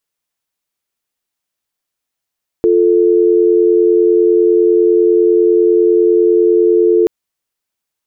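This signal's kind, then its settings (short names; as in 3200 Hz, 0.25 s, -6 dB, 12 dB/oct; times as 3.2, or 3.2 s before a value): call progress tone dial tone, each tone -10 dBFS 4.43 s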